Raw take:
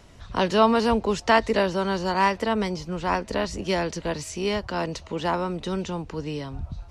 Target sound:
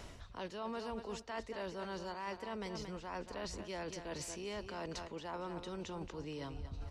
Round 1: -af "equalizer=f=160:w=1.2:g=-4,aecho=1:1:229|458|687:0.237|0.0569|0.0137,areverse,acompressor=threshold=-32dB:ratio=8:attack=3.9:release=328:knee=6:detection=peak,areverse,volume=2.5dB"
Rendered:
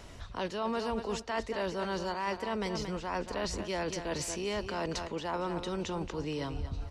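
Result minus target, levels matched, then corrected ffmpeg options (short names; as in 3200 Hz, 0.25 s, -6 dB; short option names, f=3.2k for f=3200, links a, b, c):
compressor: peak gain reduction -9 dB
-af "equalizer=f=160:w=1.2:g=-4,aecho=1:1:229|458|687:0.237|0.0569|0.0137,areverse,acompressor=threshold=-42dB:ratio=8:attack=3.9:release=328:knee=6:detection=peak,areverse,volume=2.5dB"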